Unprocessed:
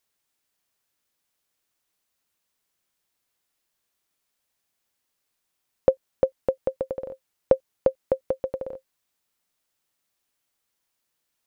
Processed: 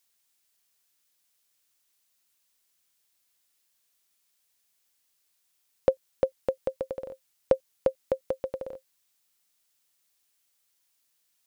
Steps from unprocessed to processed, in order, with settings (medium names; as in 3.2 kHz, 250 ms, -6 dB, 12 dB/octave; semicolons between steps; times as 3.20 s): treble shelf 2.1 kHz +11 dB; trim -4.5 dB